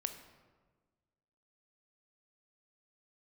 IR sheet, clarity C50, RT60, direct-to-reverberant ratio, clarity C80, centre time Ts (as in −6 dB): 9.0 dB, 1.4 s, 7.5 dB, 11.0 dB, 17 ms